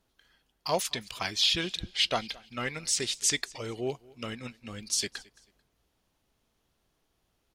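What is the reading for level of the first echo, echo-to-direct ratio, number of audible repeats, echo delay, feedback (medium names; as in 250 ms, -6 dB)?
-23.5 dB, -23.0 dB, 2, 220 ms, 29%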